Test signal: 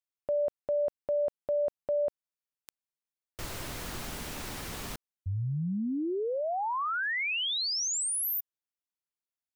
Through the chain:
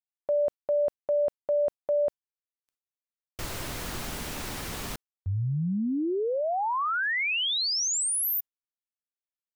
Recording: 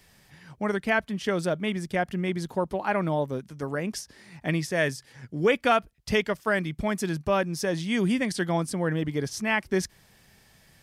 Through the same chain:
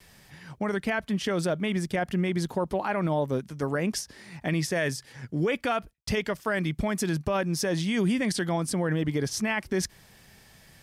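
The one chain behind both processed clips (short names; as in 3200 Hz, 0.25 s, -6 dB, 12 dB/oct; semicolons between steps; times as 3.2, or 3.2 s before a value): gate with hold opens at -52 dBFS, hold 16 ms, range -32 dB; limiter -21.5 dBFS; gain +3.5 dB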